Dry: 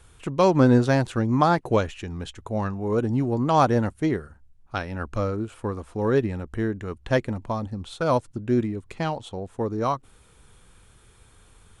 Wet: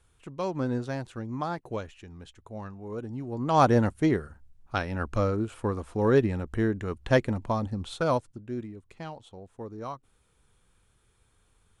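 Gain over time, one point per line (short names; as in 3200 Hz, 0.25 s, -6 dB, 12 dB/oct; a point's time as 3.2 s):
3.23 s -12.5 dB
3.66 s 0 dB
7.97 s 0 dB
8.46 s -12.5 dB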